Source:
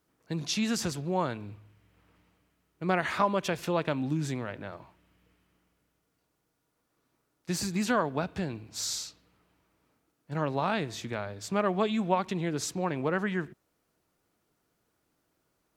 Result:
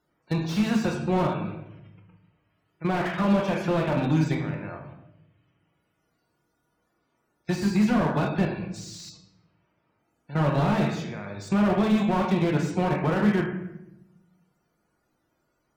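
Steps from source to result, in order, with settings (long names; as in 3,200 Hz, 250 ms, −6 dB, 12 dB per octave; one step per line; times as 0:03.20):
spectral envelope flattened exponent 0.6
output level in coarse steps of 16 dB
spectral peaks only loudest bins 64
rectangular room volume 290 cubic metres, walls mixed, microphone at 0.9 metres
slew-rate limiting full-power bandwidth 21 Hz
level +8.5 dB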